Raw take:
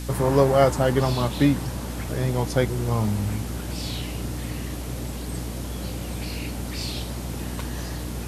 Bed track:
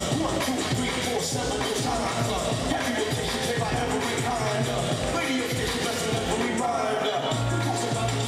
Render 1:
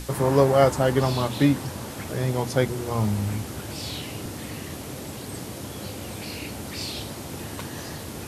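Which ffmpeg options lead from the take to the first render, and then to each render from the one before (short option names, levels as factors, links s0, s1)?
-af "bandreject=f=60:t=h:w=6,bandreject=f=120:t=h:w=6,bandreject=f=180:t=h:w=6,bandreject=f=240:t=h:w=6,bandreject=f=300:t=h:w=6"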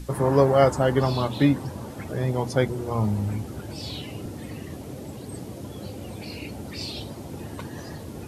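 -af "afftdn=nr=10:nf=-37"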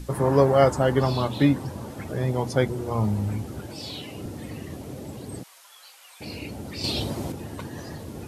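-filter_complex "[0:a]asettb=1/sr,asplit=3[s0][s1][s2];[s0]atrim=end=3.674[s3];[s1]atrim=start=3.67:end=4.18,asetpts=PTS-STARTPTS,afade=t=in:d=0.004:c=qsin,afade=t=out:st=0.506:d=0.004:c=qsin,highpass=f=190:p=1[s4];[s2]atrim=start=4.176[s5];[s3][s4]acrossfade=d=0.004:c1=hsin:c2=qsin[s6];[s6][s5]acrossfade=d=0.004:c1=qsin:c2=hsin,asplit=3[s7][s8][s9];[s7]afade=t=out:st=5.42:d=0.02[s10];[s8]highpass=f=1100:w=0.5412,highpass=f=1100:w=1.3066,afade=t=in:st=5.42:d=0.02,afade=t=out:st=6.2:d=0.02[s11];[s9]afade=t=in:st=6.2:d=0.02[s12];[s10][s11][s12]amix=inputs=3:normalize=0,asplit=3[s13][s14][s15];[s13]atrim=end=6.842[s16];[s14]atrim=start=6.838:end=7.322,asetpts=PTS-STARTPTS,volume=2.24[s17];[s15]atrim=start=7.318[s18];[s16][s17]acrossfade=d=0.004:c1=hsin:c2=hsin[s19];[s19][s18]acrossfade=d=0.004:c1=hsin:c2=hsin"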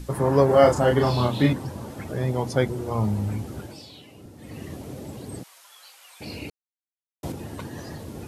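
-filter_complex "[0:a]asettb=1/sr,asplit=3[s0][s1][s2];[s0]atrim=end=0.464[s3];[s1]atrim=start=0.46:end=1.53,asetpts=PTS-STARTPTS,afade=t=in:d=0.004:c=qsin,afade=t=out:st=1.066:d=0.004:c=qsin,asplit=2[s4][s5];[s5]adelay=33,volume=0.75[s6];[s4][s6]amix=inputs=2:normalize=0,atrim=end_sample=47187[s7];[s2]atrim=start=1.526[s8];[s3][s7]acrossfade=d=0.004:c1=hsin:c2=qsin[s9];[s9][s8]acrossfade=d=0.004:c1=qsin:c2=hsin,asplit=5[s10][s11][s12][s13][s14];[s10]atrim=end=3.87,asetpts=PTS-STARTPTS,afade=t=out:st=3.61:d=0.26:silence=0.316228[s15];[s11]atrim=start=3.87:end=4.37,asetpts=PTS-STARTPTS,volume=0.316[s16];[s12]atrim=start=4.37:end=6.5,asetpts=PTS-STARTPTS,afade=t=in:d=0.26:silence=0.316228,afade=t=out:st=2.126:d=0.004:c=hsin[s17];[s13]atrim=start=6.5:end=7.23,asetpts=PTS-STARTPTS,volume=0[s18];[s14]atrim=start=7.23,asetpts=PTS-STARTPTS,afade=t=in:d=0.004:c=hsin[s19];[s15][s16][s17][s18][s19]concat=n=5:v=0:a=1"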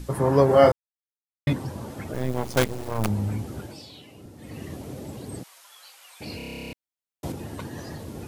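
-filter_complex "[0:a]asplit=3[s0][s1][s2];[s0]afade=t=out:st=2.13:d=0.02[s3];[s1]acrusher=bits=4:dc=4:mix=0:aa=0.000001,afade=t=in:st=2.13:d=0.02,afade=t=out:st=3.08:d=0.02[s4];[s2]afade=t=in:st=3.08:d=0.02[s5];[s3][s4][s5]amix=inputs=3:normalize=0,asplit=15[s6][s7][s8][s9][s10][s11][s12][s13][s14][s15][s16][s17][s18][s19][s20];[s6]atrim=end=0.72,asetpts=PTS-STARTPTS,afade=t=out:st=0.716:d=0.004:c=hsin[s21];[s7]atrim=start=0.72:end=1.47,asetpts=PTS-STARTPTS,volume=0[s22];[s8]atrim=start=1.47:end=6.402,asetpts=PTS-STARTPTS,afade=t=in:d=0.004:c=hsin[s23];[s9]atrim=start=6.368:end=6.402[s24];[s10]atrim=start=6.368:end=6.402[s25];[s11]atrim=start=6.368:end=6.402[s26];[s12]atrim=start=6.368:end=6.402[s27];[s13]atrim=start=6.368:end=6.402[s28];[s14]atrim=start=6.368:end=6.402[s29];[s15]atrim=start=6.368:end=6.402[s30];[s16]atrim=start=6.368:end=6.402[s31];[s17]atrim=start=6.368:end=6.402[s32];[s18]atrim=start=6.368:end=6.402[s33];[s19]atrim=start=6.368:end=6.402[s34];[s20]atrim=start=6.728[s35];[s21][s22][s23]concat=n=3:v=0:a=1[s36];[s36][s24]acrossfade=d=0.004:c1=hsin:c2=hsin[s37];[s37][s25]acrossfade=d=0.004:c1=hsin:c2=hsin[s38];[s38][s26]acrossfade=d=0.004:c1=hsin:c2=hsin[s39];[s39][s27]acrossfade=d=0.004:c1=hsin:c2=hsin[s40];[s40][s28]acrossfade=d=0.004:c1=hsin:c2=hsin[s41];[s41][s29]acrossfade=d=0.004:c1=hsin:c2=hsin[s42];[s42][s30]acrossfade=d=0.004:c1=hsin:c2=hsin[s43];[s43][s31]acrossfade=d=0.004:c1=hsin:c2=hsin[s44];[s44][s32]acrossfade=d=0.004:c1=hsin:c2=hsin[s45];[s45][s33]acrossfade=d=0.004:c1=hsin:c2=hsin[s46];[s46][s34]acrossfade=d=0.004:c1=hsin:c2=hsin[s47];[s47][s35]acrossfade=d=0.004:c1=hsin:c2=hsin"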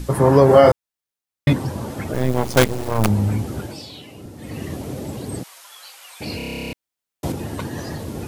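-af "alimiter=level_in=2.37:limit=0.891:release=50:level=0:latency=1"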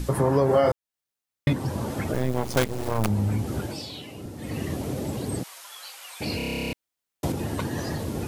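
-af "acompressor=threshold=0.0631:ratio=2"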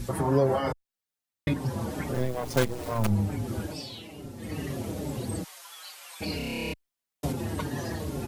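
-filter_complex "[0:a]asplit=2[s0][s1];[s1]adelay=5.4,afreqshift=-2.3[s2];[s0][s2]amix=inputs=2:normalize=1"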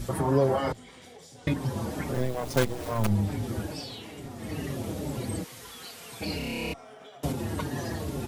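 -filter_complex "[1:a]volume=0.075[s0];[0:a][s0]amix=inputs=2:normalize=0"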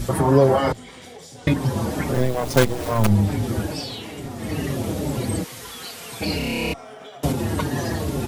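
-af "volume=2.51"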